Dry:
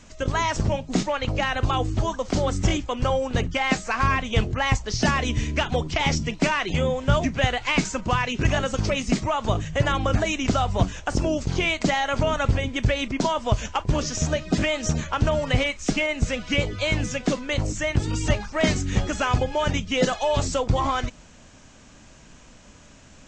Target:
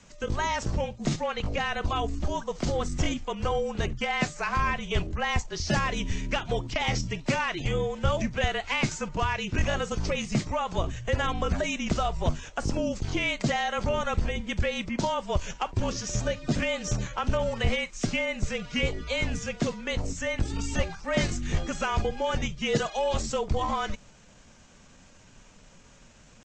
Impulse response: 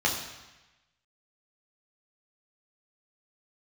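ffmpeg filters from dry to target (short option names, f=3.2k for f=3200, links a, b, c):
-af "atempo=0.88,afreqshift=-37,volume=-4.5dB"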